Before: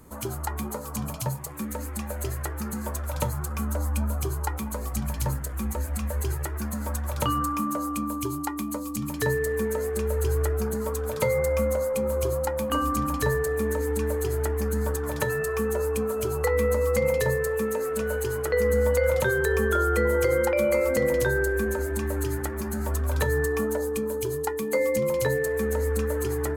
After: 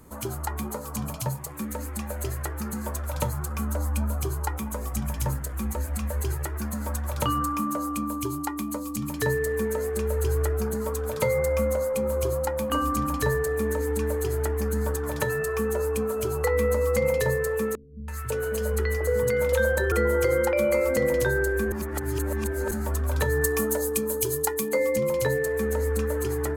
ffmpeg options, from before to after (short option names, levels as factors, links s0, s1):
-filter_complex "[0:a]asettb=1/sr,asplit=3[s0][s1][s2];[s0]atrim=end=4.564[s3];[s1]atrim=start=4.56:end=5.32,asetpts=PTS-STARTPTS,afade=t=in:d=0.004:c=qsin,afade=t=out:st=0.756:d=0.004:c=qsin,bandreject=f=4300:w=9.8[s4];[s2]atrim=start=5.316[s5];[s3][s4]acrossfade=d=0.004:c1=hsin:c2=qsin[s6];[s6][s5]acrossfade=d=0.004:c1=qsin:c2=hsin,asettb=1/sr,asplit=3[s7][s8][s9];[s7]atrim=end=17.754[s10];[s8]atrim=start=17.75:end=19.92,asetpts=PTS-STARTPTS,afade=t=in:d=0.004:c=qsin,afade=t=out:st=2.166:d=0.004:c=qsin,acrossover=split=200|970[s11][s12][s13];[s13]adelay=330[s14];[s12]adelay=550[s15];[s11][s15][s14]amix=inputs=3:normalize=0,atrim=end_sample=95697[s16];[s9]atrim=start=19.916[s17];[s10][s16]acrossfade=d=0.004:c1=hsin:c2=qsin[s18];[s18][s17]acrossfade=d=0.004:c1=qsin:c2=hsin,asettb=1/sr,asplit=3[s19][s20][s21];[s19]atrim=end=23.414[s22];[s20]atrim=start=23.41:end=24.69,asetpts=PTS-STARTPTS,afade=t=in:d=0.004:c=qsin,afade=t=out:st=1.276:d=0.004:c=qsin,highshelf=f=4200:g=11.5[s23];[s21]atrim=start=24.686[s24];[s22][s23]acrossfade=d=0.004:c1=hsin:c2=qsin[s25];[s25][s24]acrossfade=d=0.004:c1=qsin:c2=hsin,asplit=3[s26][s27][s28];[s26]atrim=end=21.722[s29];[s27]atrim=start=21.718:end=22.712,asetpts=PTS-STARTPTS,areverse[s30];[s28]atrim=start=22.708[s31];[s29][s30]acrossfade=d=0.004:c1=hsin:c2=hsin[s32];[s32][s31]acrossfade=d=0.004:c1=hsin:c2=hsin"